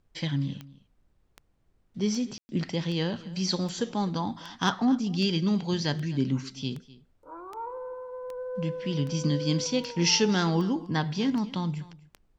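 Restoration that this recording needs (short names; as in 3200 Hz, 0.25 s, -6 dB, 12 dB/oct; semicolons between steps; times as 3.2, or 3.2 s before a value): de-click; room tone fill 2.38–2.49; expander -57 dBFS, range -21 dB; inverse comb 0.252 s -20 dB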